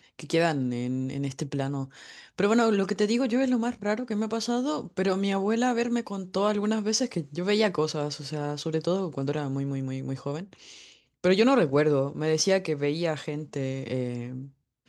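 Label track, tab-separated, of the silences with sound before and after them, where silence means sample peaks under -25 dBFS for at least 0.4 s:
1.830000	2.390000	silence
10.400000	11.240000	silence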